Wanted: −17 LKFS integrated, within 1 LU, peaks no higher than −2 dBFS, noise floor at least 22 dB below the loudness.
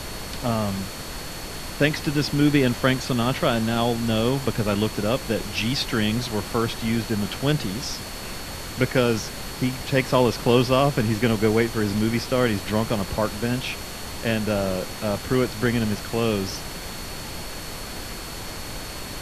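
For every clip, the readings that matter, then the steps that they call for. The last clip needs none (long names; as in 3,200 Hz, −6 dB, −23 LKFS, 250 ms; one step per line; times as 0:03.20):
interfering tone 4,400 Hz; level of the tone −42 dBFS; background noise floor −35 dBFS; target noise floor −47 dBFS; integrated loudness −24.5 LKFS; sample peak −4.0 dBFS; target loudness −17.0 LKFS
→ notch filter 4,400 Hz, Q 30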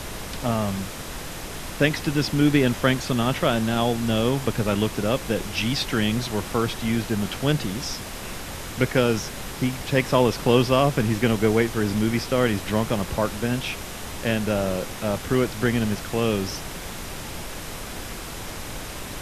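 interfering tone none found; background noise floor −35 dBFS; target noise floor −47 dBFS
→ noise reduction from a noise print 12 dB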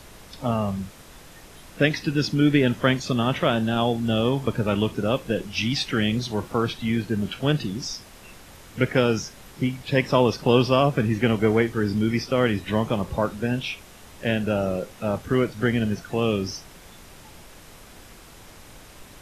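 background noise floor −47 dBFS; integrated loudness −24.0 LKFS; sample peak −4.0 dBFS; target loudness −17.0 LKFS
→ level +7 dB
brickwall limiter −2 dBFS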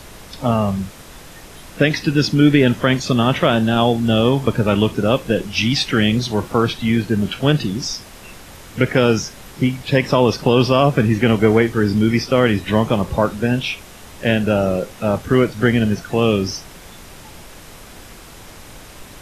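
integrated loudness −17.5 LKFS; sample peak −2.0 dBFS; background noise floor −40 dBFS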